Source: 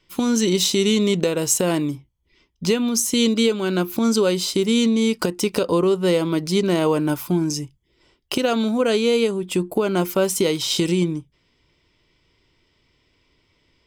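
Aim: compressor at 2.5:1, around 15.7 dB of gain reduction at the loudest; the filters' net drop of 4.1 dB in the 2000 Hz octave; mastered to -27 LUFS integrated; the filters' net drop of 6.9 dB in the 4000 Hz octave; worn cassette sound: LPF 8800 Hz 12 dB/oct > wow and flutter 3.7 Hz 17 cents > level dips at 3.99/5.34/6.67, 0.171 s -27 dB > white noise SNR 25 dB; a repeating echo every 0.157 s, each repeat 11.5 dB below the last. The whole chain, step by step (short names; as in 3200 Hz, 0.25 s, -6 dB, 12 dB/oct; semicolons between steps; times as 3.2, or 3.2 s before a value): bell 2000 Hz -3 dB; bell 4000 Hz -8 dB; compressor 2.5:1, threshold -40 dBFS; LPF 8800 Hz 12 dB/oct; feedback echo 0.157 s, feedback 27%, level -11.5 dB; wow and flutter 3.7 Hz 17 cents; level dips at 3.99/5.34/6.67, 0.171 s -27 dB; white noise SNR 25 dB; gain +9 dB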